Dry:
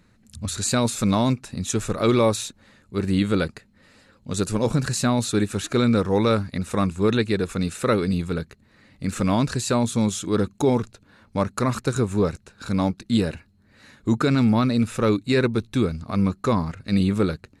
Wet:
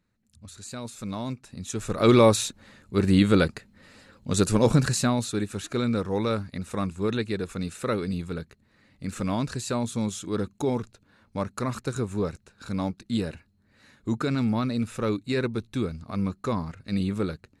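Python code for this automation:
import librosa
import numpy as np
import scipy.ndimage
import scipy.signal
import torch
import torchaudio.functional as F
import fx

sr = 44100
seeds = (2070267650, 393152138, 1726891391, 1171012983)

y = fx.gain(x, sr, db=fx.line((0.68, -16.5), (1.76, -7.5), (2.11, 2.0), (4.78, 2.0), (5.34, -6.5)))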